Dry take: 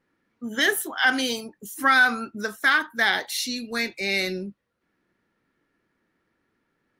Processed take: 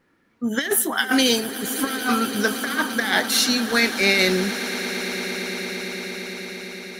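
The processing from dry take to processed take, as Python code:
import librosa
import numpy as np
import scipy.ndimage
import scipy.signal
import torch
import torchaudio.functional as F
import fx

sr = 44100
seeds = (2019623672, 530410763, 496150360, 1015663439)

y = fx.over_compress(x, sr, threshold_db=-25.0, ratio=-0.5)
y = fx.echo_swell(y, sr, ms=114, loudest=8, wet_db=-17.0)
y = y * 10.0 ** (5.5 / 20.0)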